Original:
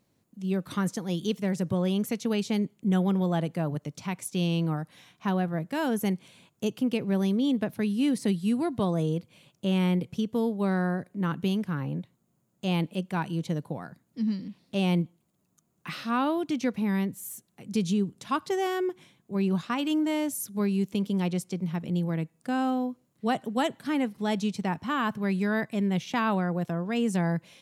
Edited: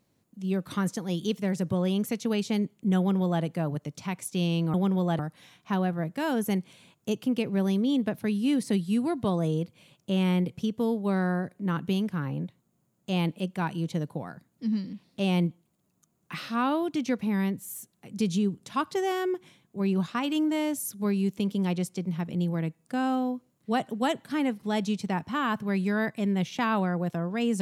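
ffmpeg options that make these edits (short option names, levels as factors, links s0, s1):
-filter_complex "[0:a]asplit=3[s0][s1][s2];[s0]atrim=end=4.742[s3];[s1]atrim=start=2.978:end=3.432[s4];[s2]atrim=start=4.738[s5];[s3][s4]acrossfade=d=0.004:c1=hsin:c2=hsin[s6];[s6][s5]acrossfade=d=0.004:c1=hsin:c2=hsin"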